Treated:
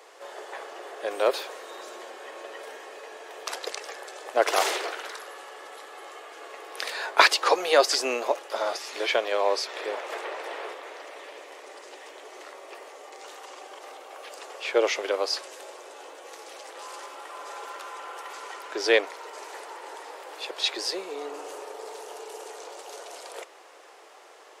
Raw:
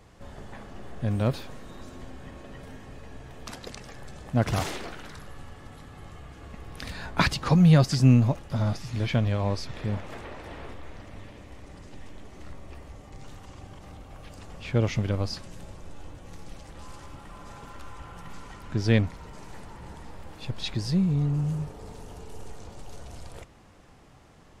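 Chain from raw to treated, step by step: steep high-pass 380 Hz 48 dB/octave; trim +8 dB

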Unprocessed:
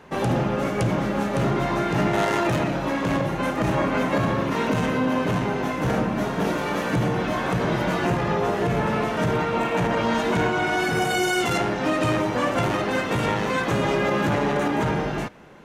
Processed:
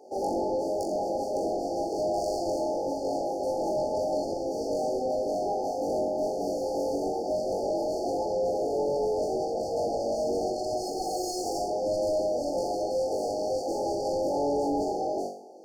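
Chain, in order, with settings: median filter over 3 samples; high-pass 340 Hz 24 dB/octave; treble shelf 8.3 kHz -9 dB; flutter echo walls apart 3.6 m, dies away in 0.46 s; saturation -22.5 dBFS, distortion -11 dB; FFT band-reject 870–4300 Hz

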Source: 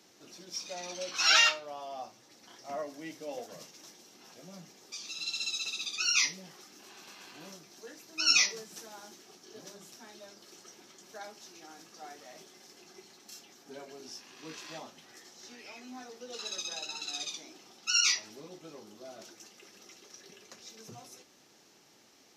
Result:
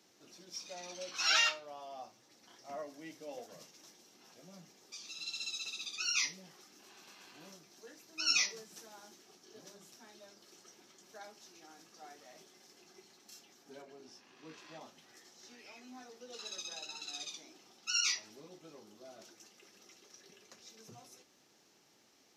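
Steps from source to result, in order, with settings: 13.82–14.81 s: treble shelf 3.9 kHz -9.5 dB; trim -6 dB

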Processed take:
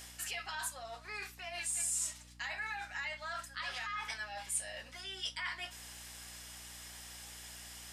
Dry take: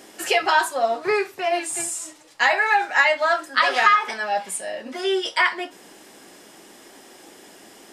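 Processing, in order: peak limiter -13 dBFS, peak gain reduction 9 dB; reverse; compression, threshold -33 dBFS, peak gain reduction 14 dB; reverse; amplifier tone stack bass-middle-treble 10-0-10; hum 60 Hz, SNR 16 dB; trim +1 dB

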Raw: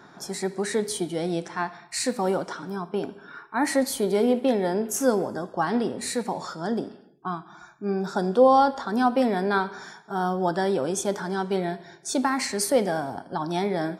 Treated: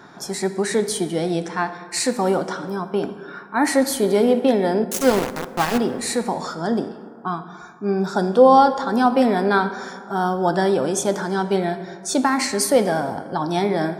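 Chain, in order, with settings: 4.84–5.78 s: small samples zeroed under -24 dBFS; plate-style reverb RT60 2.5 s, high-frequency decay 0.4×, DRR 12.5 dB; trim +5 dB

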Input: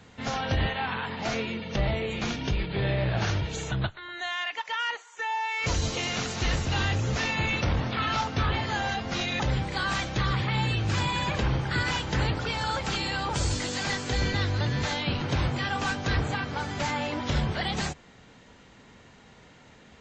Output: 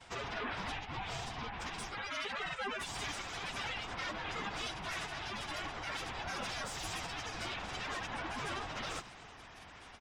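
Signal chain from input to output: tracing distortion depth 0.02 ms; feedback delay 92 ms, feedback 31%, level -8.5 dB; granulator, pitch spread up and down by 7 st; reverse; compression 5:1, threshold -37 dBFS, peak gain reduction 14 dB; reverse; steep high-pass 280 Hz 48 dB/octave; ring modulator 400 Hz; plain phase-vocoder stretch 0.5×; band-stop 4.3 kHz, Q 14; in parallel at 0 dB: peak limiter -42 dBFS, peak gain reduction 8.5 dB; on the sum: trim +3.5 dB

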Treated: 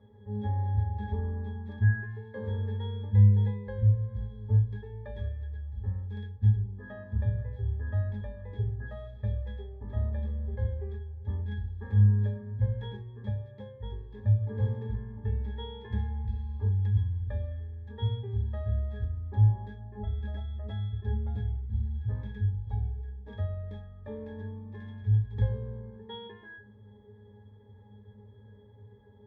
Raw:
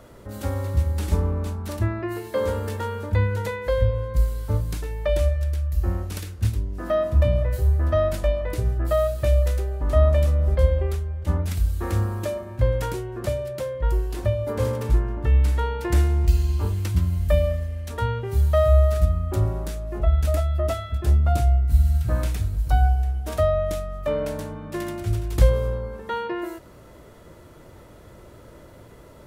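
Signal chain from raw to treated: median filter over 5 samples; dynamic bell 2.3 kHz, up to +4 dB, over -45 dBFS, Q 0.76; pitch-class resonator G#, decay 0.28 s; trim +5 dB

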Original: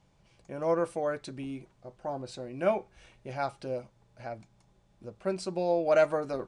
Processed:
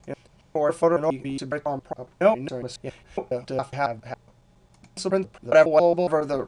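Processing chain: slices played last to first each 138 ms, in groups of 4; trim +8 dB

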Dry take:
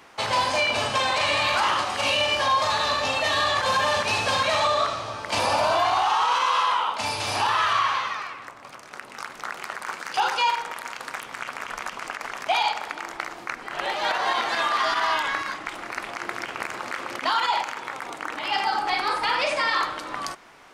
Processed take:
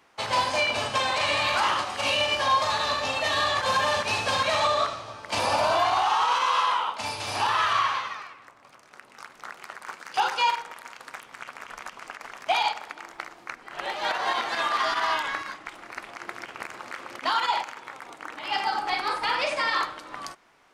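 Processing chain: 12.24–13.21 s: crackle 66 per s -> 18 per s -43 dBFS; upward expansion 1.5:1, over -39 dBFS

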